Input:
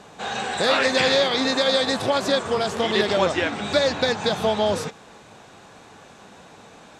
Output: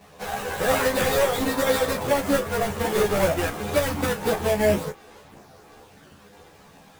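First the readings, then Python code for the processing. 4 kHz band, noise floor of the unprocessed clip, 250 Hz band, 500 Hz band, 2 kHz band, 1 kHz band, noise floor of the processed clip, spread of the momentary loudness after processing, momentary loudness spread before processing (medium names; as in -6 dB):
-9.5 dB, -48 dBFS, -0.5 dB, -1.0 dB, -3.5 dB, -2.0 dB, -51 dBFS, 5 LU, 7 LU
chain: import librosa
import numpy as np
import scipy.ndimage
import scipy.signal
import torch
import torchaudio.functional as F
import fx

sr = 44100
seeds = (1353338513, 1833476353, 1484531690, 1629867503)

p1 = fx.halfwave_hold(x, sr)
p2 = fx.dynamic_eq(p1, sr, hz=4300.0, q=0.81, threshold_db=-34.0, ratio=4.0, max_db=-7)
p3 = fx.chorus_voices(p2, sr, voices=4, hz=0.72, base_ms=11, depth_ms=1.3, mix_pct=60)
p4 = np.sign(p3) * np.maximum(np.abs(p3) - 10.0 ** (-36.5 / 20.0), 0.0)
p5 = p3 + (p4 * librosa.db_to_amplitude(-6.0))
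p6 = fx.room_early_taps(p5, sr, ms=(14, 35), db=(-4.0, -11.5))
y = p6 * librosa.db_to_amplitude(-7.0)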